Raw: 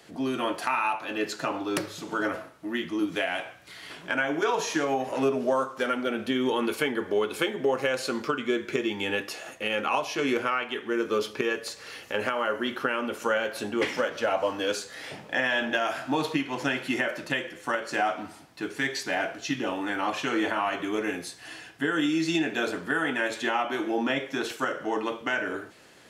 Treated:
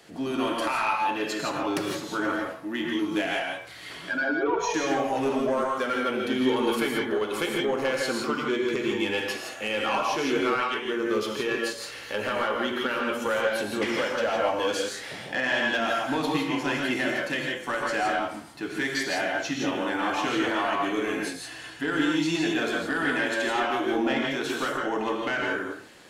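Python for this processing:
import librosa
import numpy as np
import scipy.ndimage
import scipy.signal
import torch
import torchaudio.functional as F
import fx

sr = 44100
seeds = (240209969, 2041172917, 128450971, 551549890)

y = fx.spec_expand(x, sr, power=1.8, at=(4.09, 4.74))
y = 10.0 ** (-19.5 / 20.0) * np.tanh(y / 10.0 ** (-19.5 / 20.0))
y = fx.rev_gated(y, sr, seeds[0], gate_ms=190, shape='rising', drr_db=0.0)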